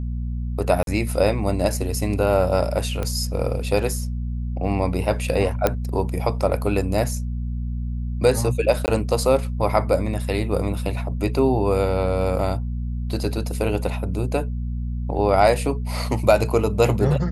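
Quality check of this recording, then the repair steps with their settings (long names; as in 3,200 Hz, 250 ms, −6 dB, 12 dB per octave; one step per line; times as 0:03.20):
mains hum 60 Hz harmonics 4 −26 dBFS
0:00.83–0:00.87: drop-out 42 ms
0:03.03: click −13 dBFS
0:05.67: click −5 dBFS
0:08.86–0:08.88: drop-out 19 ms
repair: click removal
hum removal 60 Hz, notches 4
repair the gap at 0:00.83, 42 ms
repair the gap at 0:08.86, 19 ms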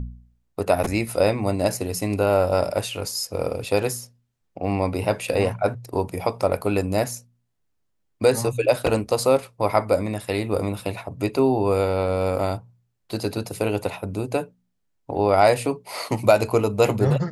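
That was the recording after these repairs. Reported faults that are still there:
none of them is left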